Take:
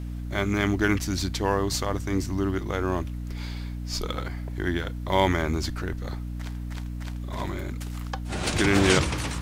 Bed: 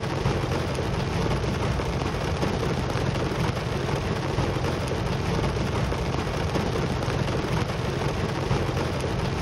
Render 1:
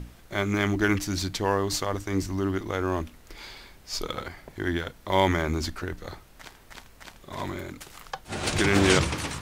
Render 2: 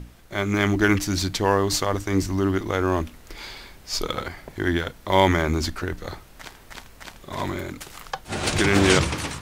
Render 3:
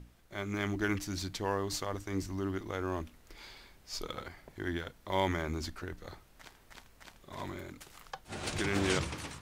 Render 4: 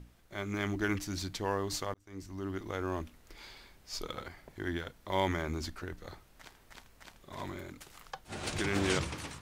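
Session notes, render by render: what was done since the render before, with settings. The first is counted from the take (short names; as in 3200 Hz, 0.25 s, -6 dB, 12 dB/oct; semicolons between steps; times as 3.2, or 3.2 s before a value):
notches 60/120/180/240/300 Hz
AGC gain up to 5 dB
gain -13 dB
1.94–2.68 fade in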